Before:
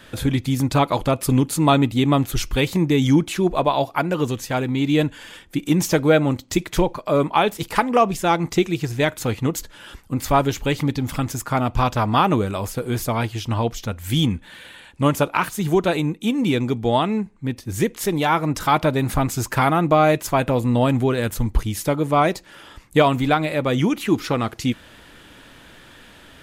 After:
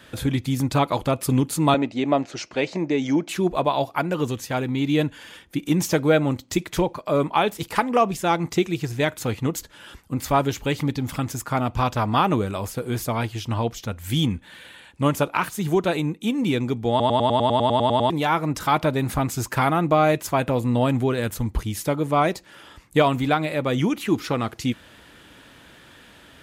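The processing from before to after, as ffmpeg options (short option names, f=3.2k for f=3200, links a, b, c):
-filter_complex "[0:a]asettb=1/sr,asplit=3[a][b][c];[a]atrim=end=1.744[d];[b]atrim=start=1.74:end=3.29,asetpts=PTS-STARTPTS,afade=t=in:d=0.004:c=qsin,afade=t=out:st=1.546:d=0.004:c=qsin,highpass=260,equalizer=f=630:t=q:w=4:g=9,equalizer=f=1.2k:t=q:w=4:g=-4,equalizer=f=3.4k:t=q:w=4:g=-8,lowpass=f=6.1k:w=0.5412,lowpass=f=6.1k:w=1.3066[e];[c]atrim=start=3.286[f];[d][e]acrossfade=d=0.004:c1=hsin:c2=qsin[g];[g][f]acrossfade=d=0.004:c1=qsin:c2=hsin,asettb=1/sr,asplit=3[h][i][j];[h]atrim=end=4.464[k];[i]atrim=start=4.46:end=5.71,asetpts=PTS-STARTPTS,afade=t=in:d=0.004:c=qsin,afade=t=out:st=1.246:d=0.004:c=qsin,bandreject=f=7.7k:w=12[l];[j]atrim=start=5.706[m];[k][l]acrossfade=d=0.004:c1=hsin:c2=qsin[n];[n][m]acrossfade=d=0.004:c1=qsin:c2=hsin,asplit=13[o][p][q][r][s][t][u][v][w][x][y][z][aa];[o]atrim=end=17.002[ab];[p]atrim=start=16.898:end=17.002[ac];[q]atrim=start=16.898:end=17.002[ad];[r]atrim=start=16.898:end=17.002[ae];[s]atrim=start=16.898:end=17.002[af];[t]atrim=start=16.898:end=17.002[ag];[u]atrim=start=16.898:end=17.002[ah];[v]atrim=start=16.898:end=17.002[ai];[w]atrim=start=16.898:end=17.002[aj];[x]atrim=start=16.898:end=17.002[ak];[y]atrim=start=16.898:end=17.002[al];[z]atrim=start=16.898:end=17.002[am];[aa]atrim=start=18.098[an];[ab][ac]acrossfade=d=0.004:c1=hsin:c2=hsin[ao];[ao][ad]acrossfade=d=0.004:c1=hsin:c2=hsin[ap];[ap][ae]acrossfade=d=0.004:c1=hsin:c2=hsin[aq];[aq][af]acrossfade=d=0.004:c1=hsin:c2=hsin[ar];[ar][ag]acrossfade=d=0.004:c1=hsin:c2=hsin[as];[as][ah]acrossfade=d=0.004:c1=hsin:c2=hsin[at];[at][ai]acrossfade=d=0.004:c1=hsin:c2=hsin[au];[au][aj]acrossfade=d=0.004:c1=hsin:c2=hsin[av];[av][ak]acrossfade=d=0.004:c1=hsin:c2=hsin[aw];[aw][al]acrossfade=d=0.004:c1=hsin:c2=hsin[ax];[ax][am]acrossfade=d=0.004:c1=hsin:c2=hsin[ay];[ay][an]acrossfade=d=0.004:c1=hsin:c2=hsin,highpass=47,volume=-2.5dB"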